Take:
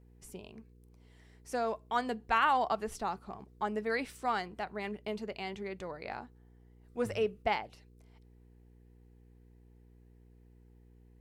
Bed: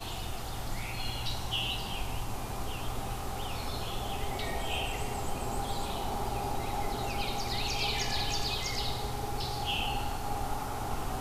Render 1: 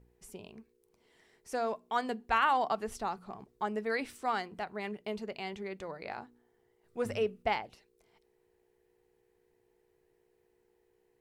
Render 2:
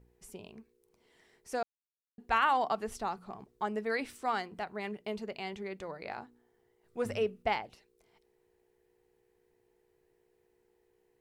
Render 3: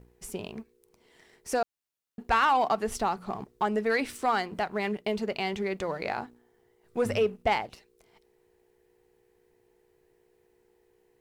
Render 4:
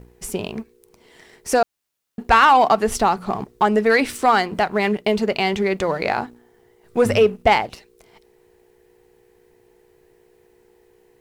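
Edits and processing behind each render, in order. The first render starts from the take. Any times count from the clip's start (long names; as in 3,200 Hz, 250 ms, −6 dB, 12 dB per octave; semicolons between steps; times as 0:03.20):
hum removal 60 Hz, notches 5
0:01.63–0:02.18: silence
in parallel at +2.5 dB: downward compressor, threshold −39 dBFS, peak gain reduction 15.5 dB; on the sum: leveller curve on the samples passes 1
level +10.5 dB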